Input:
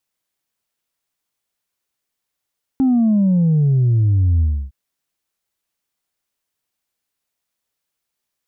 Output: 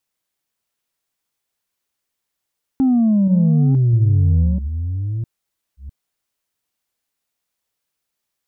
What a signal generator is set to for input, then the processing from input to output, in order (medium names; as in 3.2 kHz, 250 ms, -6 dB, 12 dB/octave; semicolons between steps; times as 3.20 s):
sub drop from 270 Hz, over 1.91 s, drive 1 dB, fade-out 0.30 s, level -12 dB
chunks repeated in reverse 655 ms, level -8 dB